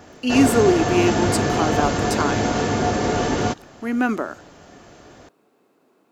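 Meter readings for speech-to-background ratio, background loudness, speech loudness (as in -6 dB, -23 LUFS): -0.5 dB, -21.5 LUFS, -22.0 LUFS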